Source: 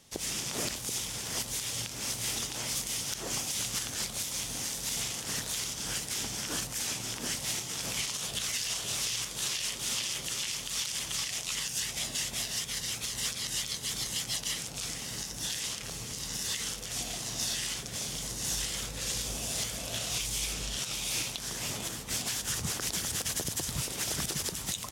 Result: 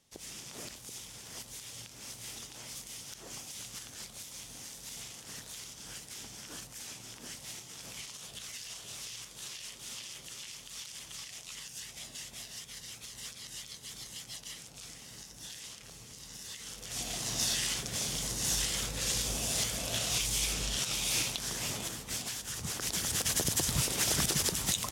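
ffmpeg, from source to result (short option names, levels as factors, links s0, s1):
-af "volume=3.98,afade=t=in:st=16.63:d=0.68:silence=0.237137,afade=t=out:st=21.25:d=1.25:silence=0.375837,afade=t=in:st=22.5:d=1.01:silence=0.298538"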